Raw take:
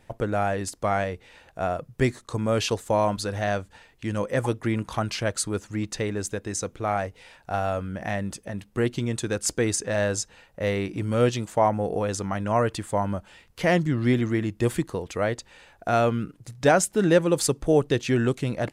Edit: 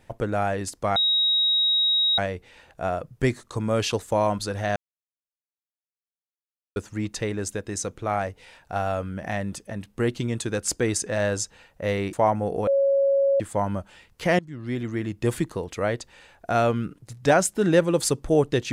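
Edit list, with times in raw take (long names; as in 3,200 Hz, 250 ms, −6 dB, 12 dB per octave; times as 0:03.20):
0:00.96: insert tone 3,800 Hz −18 dBFS 1.22 s
0:03.54–0:05.54: silence
0:10.91–0:11.51: remove
0:12.05–0:12.78: beep over 552 Hz −17 dBFS
0:13.77–0:14.70: fade in, from −21.5 dB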